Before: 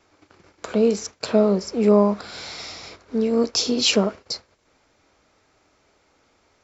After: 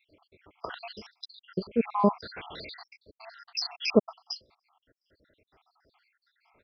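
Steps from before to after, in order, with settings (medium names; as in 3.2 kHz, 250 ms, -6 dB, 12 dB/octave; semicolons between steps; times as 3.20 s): random holes in the spectrogram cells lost 77%; resampled via 11.025 kHz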